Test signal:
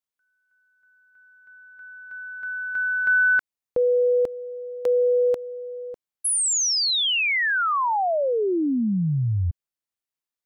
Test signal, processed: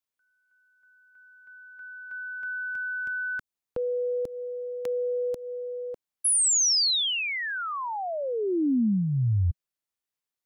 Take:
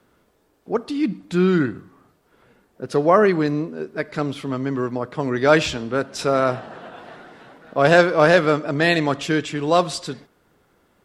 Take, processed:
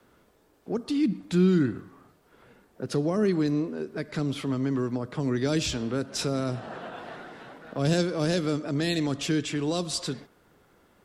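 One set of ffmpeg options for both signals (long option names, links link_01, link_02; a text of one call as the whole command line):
ffmpeg -i in.wav -filter_complex "[0:a]acrossover=split=310|4000[link_01][link_02][link_03];[link_02]acompressor=threshold=-30dB:ratio=10:attack=0.37:release=287:knee=2.83:detection=peak[link_04];[link_01][link_04][link_03]amix=inputs=3:normalize=0,adynamicequalizer=threshold=0.00891:dfrequency=160:dqfactor=3.6:tfrequency=160:tqfactor=3.6:attack=5:release=100:ratio=0.375:range=3.5:mode=cutabove:tftype=bell" out.wav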